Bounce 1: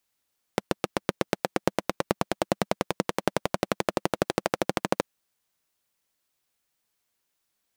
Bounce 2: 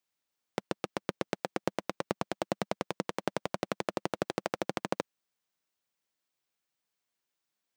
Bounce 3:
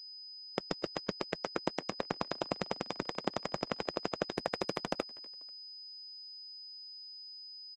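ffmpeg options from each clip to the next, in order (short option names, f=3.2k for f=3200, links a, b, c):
-af "highpass=100,equalizer=f=12k:t=o:w=0.67:g=-8,volume=-6.5dB"
-filter_complex "[0:a]asplit=3[a][b][c];[b]adelay=244,afreqshift=47,volume=-22dB[d];[c]adelay=488,afreqshift=94,volume=-31.4dB[e];[a][d][e]amix=inputs=3:normalize=0,aeval=exprs='val(0)+0.00631*sin(2*PI*5000*n/s)':c=same,volume=-2dB" -ar 48000 -c:a libopus -b:a 12k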